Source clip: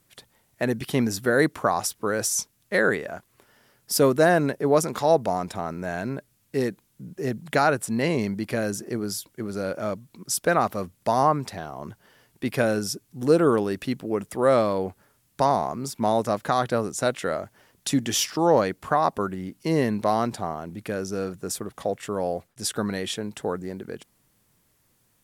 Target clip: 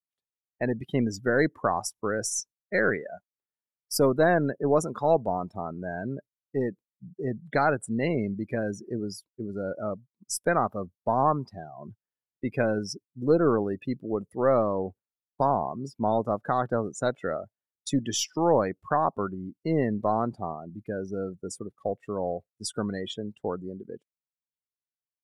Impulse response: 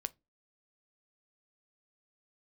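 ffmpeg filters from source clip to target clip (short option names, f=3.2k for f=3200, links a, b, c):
-af "aeval=exprs='0.447*(cos(1*acos(clip(val(0)/0.447,-1,1)))-cos(1*PI/2))+0.0141*(cos(6*acos(clip(val(0)/0.447,-1,1)))-cos(6*PI/2))':c=same,agate=range=-14dB:threshold=-40dB:ratio=16:detection=peak,afftdn=nr=28:nf=-29,volume=-3dB"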